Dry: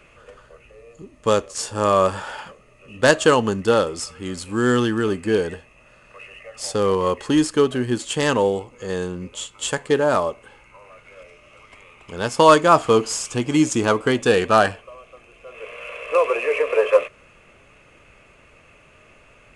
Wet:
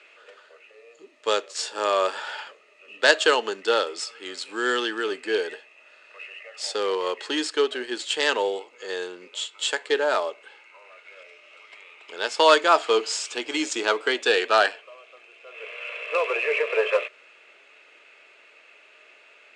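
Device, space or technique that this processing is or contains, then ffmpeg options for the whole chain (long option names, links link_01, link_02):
phone speaker on a table: -af "highpass=frequency=440:width=0.5412,highpass=frequency=440:width=1.3066,equalizer=frequency=530:width_type=q:width=4:gain=-8,equalizer=frequency=760:width_type=q:width=4:gain=-5,equalizer=frequency=1100:width_type=q:width=4:gain=-9,equalizer=frequency=3900:width_type=q:width=4:gain=5,equalizer=frequency=6300:width_type=q:width=4:gain=-6,lowpass=frequency=7200:width=0.5412,lowpass=frequency=7200:width=1.3066,volume=1.5dB"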